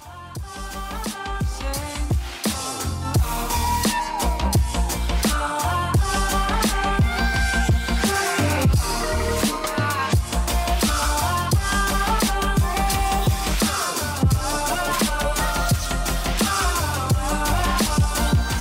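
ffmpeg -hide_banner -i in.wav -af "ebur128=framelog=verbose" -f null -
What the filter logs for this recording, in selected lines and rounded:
Integrated loudness:
  I:         -21.8 LUFS
  Threshold: -31.9 LUFS
Loudness range:
  LRA:         2.9 LU
  Threshold: -41.7 LUFS
  LRA low:   -23.7 LUFS
  LRA high:  -20.8 LUFS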